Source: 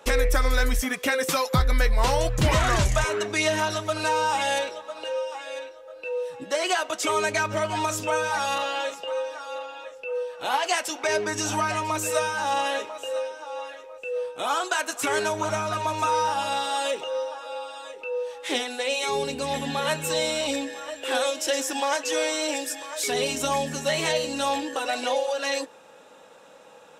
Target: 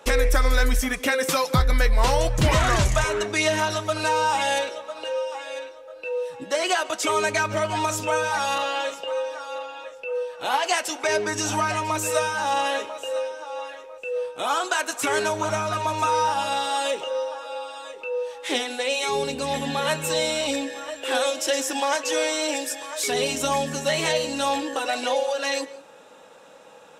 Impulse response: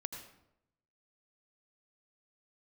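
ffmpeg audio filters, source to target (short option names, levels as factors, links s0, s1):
-filter_complex "[0:a]asplit=2[s0][s1];[1:a]atrim=start_sample=2205,afade=t=out:st=0.16:d=0.01,atrim=end_sample=7497,asetrate=23814,aresample=44100[s2];[s1][s2]afir=irnorm=-1:irlink=0,volume=0.188[s3];[s0][s3]amix=inputs=2:normalize=0"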